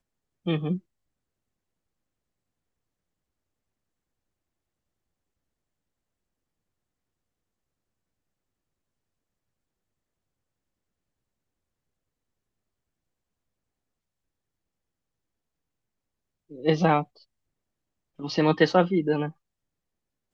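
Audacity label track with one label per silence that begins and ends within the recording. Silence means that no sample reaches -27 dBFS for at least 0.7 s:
0.760000	16.650000	silence
17.020000	18.240000	silence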